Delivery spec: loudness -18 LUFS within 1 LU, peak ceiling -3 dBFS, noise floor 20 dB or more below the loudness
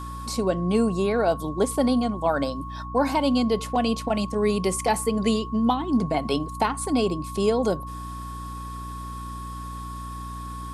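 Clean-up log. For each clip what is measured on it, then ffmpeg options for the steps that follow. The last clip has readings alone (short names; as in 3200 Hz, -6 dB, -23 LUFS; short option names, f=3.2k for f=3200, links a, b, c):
hum 60 Hz; harmonics up to 300 Hz; hum level -34 dBFS; steady tone 1100 Hz; tone level -36 dBFS; loudness -24.5 LUFS; peak -10.0 dBFS; loudness target -18.0 LUFS
-> -af "bandreject=f=60:t=h:w=4,bandreject=f=120:t=h:w=4,bandreject=f=180:t=h:w=4,bandreject=f=240:t=h:w=4,bandreject=f=300:t=h:w=4"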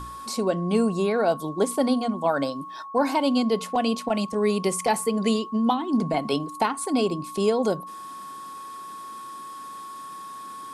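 hum none; steady tone 1100 Hz; tone level -36 dBFS
-> -af "bandreject=f=1.1k:w=30"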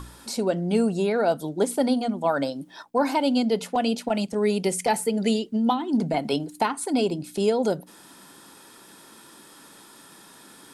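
steady tone none; loudness -25.0 LUFS; peak -10.5 dBFS; loudness target -18.0 LUFS
-> -af "volume=7dB"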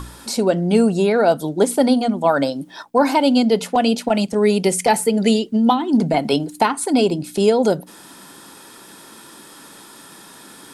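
loudness -18.0 LUFS; peak -3.5 dBFS; noise floor -43 dBFS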